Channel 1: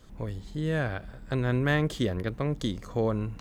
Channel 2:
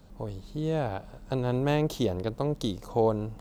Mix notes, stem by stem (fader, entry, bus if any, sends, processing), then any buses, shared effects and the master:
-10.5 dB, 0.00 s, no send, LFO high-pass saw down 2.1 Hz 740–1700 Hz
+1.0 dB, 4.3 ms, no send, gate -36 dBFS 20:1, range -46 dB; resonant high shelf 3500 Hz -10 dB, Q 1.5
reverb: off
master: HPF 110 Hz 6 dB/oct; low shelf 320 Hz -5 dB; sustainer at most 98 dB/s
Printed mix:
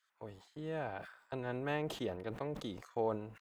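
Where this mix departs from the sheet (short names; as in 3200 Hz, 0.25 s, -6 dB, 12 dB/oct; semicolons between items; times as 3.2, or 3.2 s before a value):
stem 1 -10.5 dB -> -19.0 dB; stem 2 +1.0 dB -> -9.0 dB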